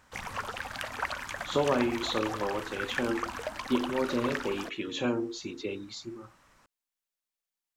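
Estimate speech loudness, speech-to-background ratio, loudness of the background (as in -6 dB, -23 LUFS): -32.0 LUFS, 4.5 dB, -36.5 LUFS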